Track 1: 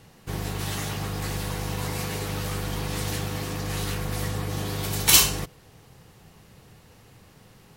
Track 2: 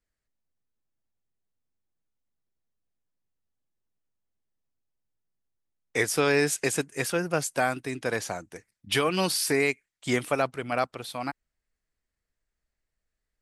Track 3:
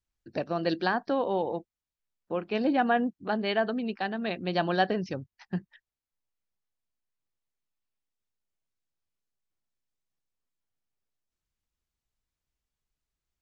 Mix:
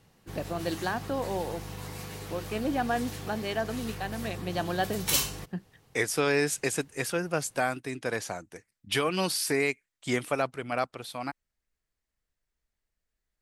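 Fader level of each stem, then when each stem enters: −10.0, −2.5, −4.0 decibels; 0.00, 0.00, 0.00 seconds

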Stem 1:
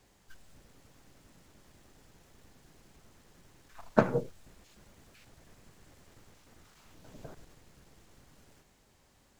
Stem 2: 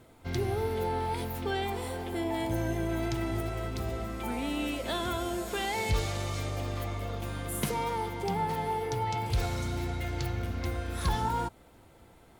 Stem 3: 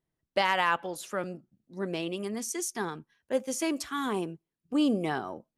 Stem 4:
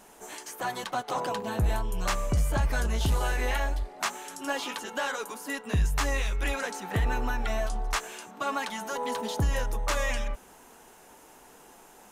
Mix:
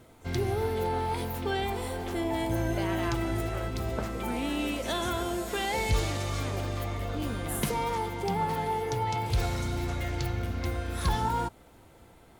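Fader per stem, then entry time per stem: −12.5, +1.5, −12.0, −17.5 decibels; 0.00, 0.00, 2.40, 0.00 seconds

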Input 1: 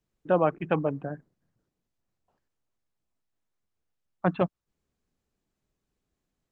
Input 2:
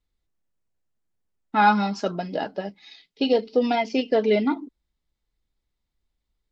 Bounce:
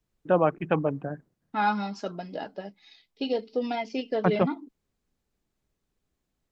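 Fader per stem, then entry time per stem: +1.0, −7.5 decibels; 0.00, 0.00 seconds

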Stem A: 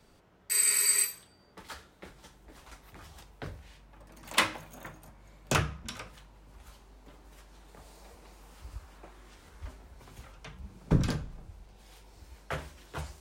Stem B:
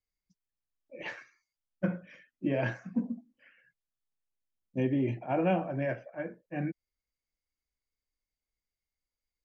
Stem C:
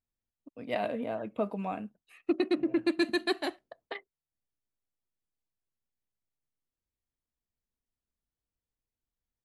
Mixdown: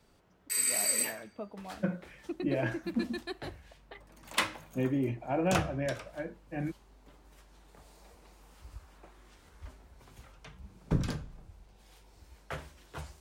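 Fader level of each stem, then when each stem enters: −4.0, −1.5, −10.5 decibels; 0.00, 0.00, 0.00 seconds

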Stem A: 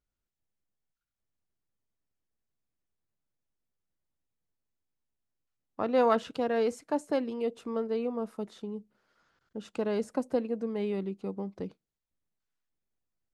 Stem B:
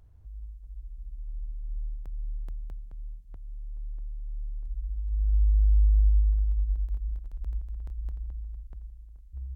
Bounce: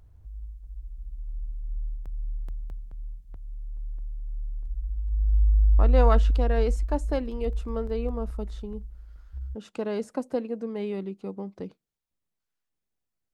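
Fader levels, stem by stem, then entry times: +0.5, +2.0 decibels; 0.00, 0.00 seconds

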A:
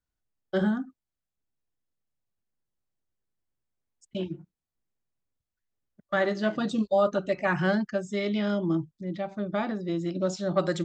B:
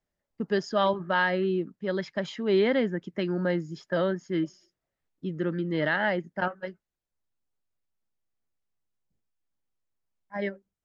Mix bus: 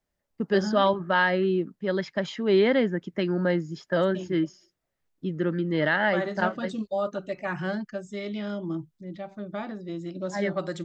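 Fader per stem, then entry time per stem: −5.0, +2.5 decibels; 0.00, 0.00 seconds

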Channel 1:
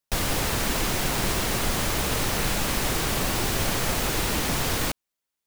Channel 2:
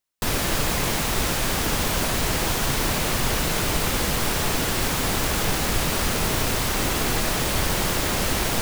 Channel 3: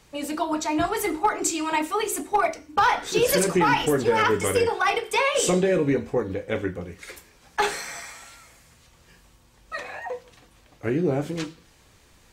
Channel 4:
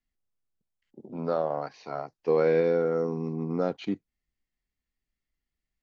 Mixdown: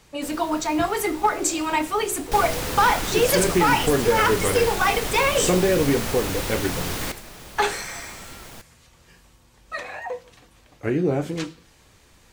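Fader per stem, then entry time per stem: −3.0, −18.5, +1.5, −14.0 decibels; 2.20, 0.00, 0.00, 0.00 seconds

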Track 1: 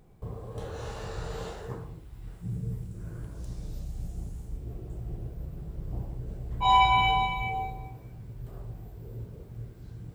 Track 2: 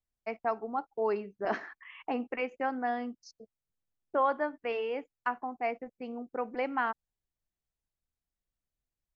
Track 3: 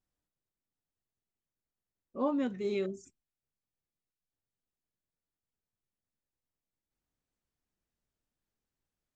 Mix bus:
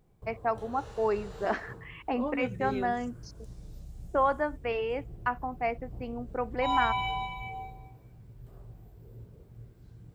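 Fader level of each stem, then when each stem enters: −8.0, +2.0, −3.0 decibels; 0.00, 0.00, 0.00 seconds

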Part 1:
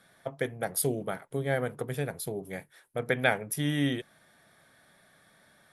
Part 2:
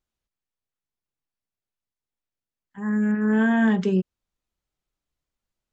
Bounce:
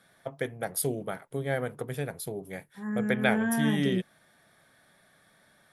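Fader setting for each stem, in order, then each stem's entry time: −1.0, −8.0 decibels; 0.00, 0.00 seconds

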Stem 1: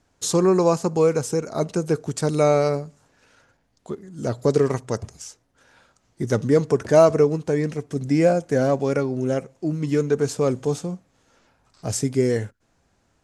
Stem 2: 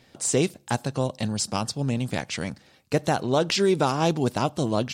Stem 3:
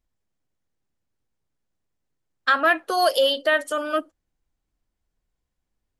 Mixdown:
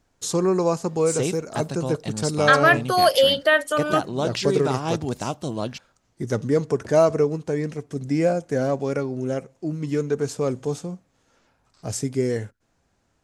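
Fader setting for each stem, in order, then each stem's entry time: −3.0, −3.5, +2.5 decibels; 0.00, 0.85, 0.00 seconds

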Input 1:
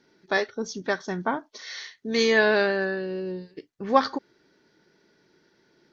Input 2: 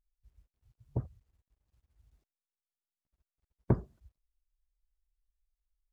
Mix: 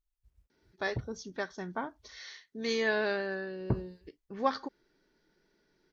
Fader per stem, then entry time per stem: −9.5, −3.0 decibels; 0.50, 0.00 seconds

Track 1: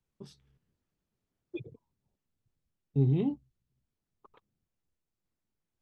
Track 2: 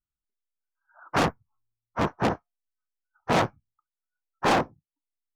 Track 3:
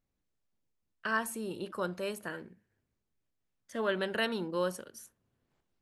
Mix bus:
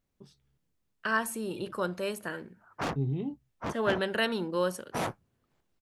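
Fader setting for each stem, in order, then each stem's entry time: −5.0, −10.0, +3.0 decibels; 0.00, 1.65, 0.00 seconds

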